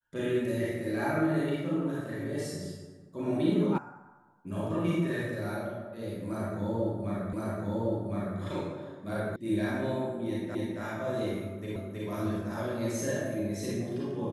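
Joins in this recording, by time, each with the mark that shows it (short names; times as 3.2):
3.78 sound cut off
7.33 repeat of the last 1.06 s
9.36 sound cut off
10.55 repeat of the last 0.27 s
11.76 repeat of the last 0.32 s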